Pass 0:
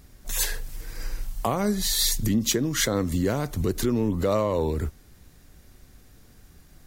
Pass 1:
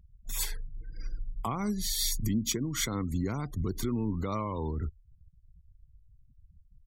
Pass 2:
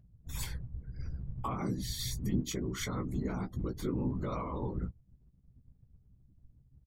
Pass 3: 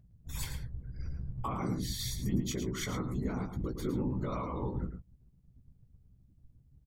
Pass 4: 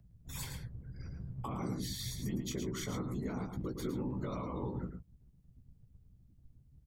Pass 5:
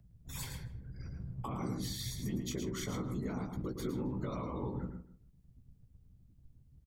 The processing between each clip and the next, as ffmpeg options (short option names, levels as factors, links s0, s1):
-af "afftfilt=real='re*gte(hypot(re,im),0.0141)':imag='im*gte(hypot(re,im),0.0141)':win_size=1024:overlap=0.75,aecho=1:1:0.9:0.61,volume=0.376"
-filter_complex "[0:a]highshelf=f=4200:g=-9,afftfilt=real='hypot(re,im)*cos(2*PI*random(0))':imag='hypot(re,im)*sin(2*PI*random(1))':win_size=512:overlap=0.75,asplit=2[s0][s1];[s1]adelay=16,volume=0.447[s2];[s0][s2]amix=inputs=2:normalize=0,volume=1.33"
-filter_complex "[0:a]asplit=2[s0][s1];[s1]adelay=110.8,volume=0.398,highshelf=f=4000:g=-2.49[s2];[s0][s2]amix=inputs=2:normalize=0"
-filter_complex "[0:a]acrossover=split=91|410|1100|2800[s0][s1][s2][s3][s4];[s0]acompressor=threshold=0.00316:ratio=4[s5];[s1]acompressor=threshold=0.0158:ratio=4[s6];[s2]acompressor=threshold=0.00631:ratio=4[s7];[s3]acompressor=threshold=0.002:ratio=4[s8];[s4]acompressor=threshold=0.00794:ratio=4[s9];[s5][s6][s7][s8][s9]amix=inputs=5:normalize=0"
-filter_complex "[0:a]asplit=2[s0][s1];[s1]adelay=156,lowpass=f=2200:p=1,volume=0.2,asplit=2[s2][s3];[s3]adelay=156,lowpass=f=2200:p=1,volume=0.17[s4];[s0][s2][s4]amix=inputs=3:normalize=0"